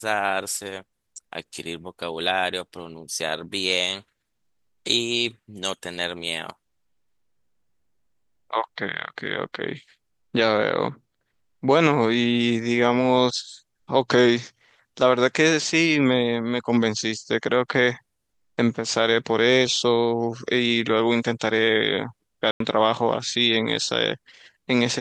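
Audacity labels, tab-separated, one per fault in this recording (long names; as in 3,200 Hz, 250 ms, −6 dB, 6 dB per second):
22.510000	22.600000	drop-out 93 ms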